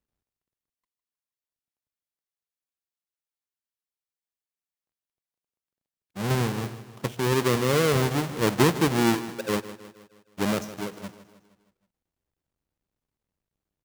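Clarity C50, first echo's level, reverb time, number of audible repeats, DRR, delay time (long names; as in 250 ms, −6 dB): no reverb audible, −14.5 dB, no reverb audible, 4, no reverb audible, 157 ms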